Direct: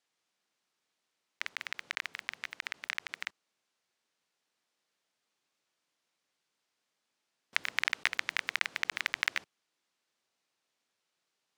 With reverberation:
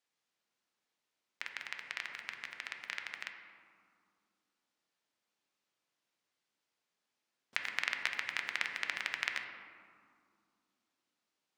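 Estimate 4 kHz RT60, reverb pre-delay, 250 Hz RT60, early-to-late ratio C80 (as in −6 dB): 1.0 s, 4 ms, 3.6 s, 7.0 dB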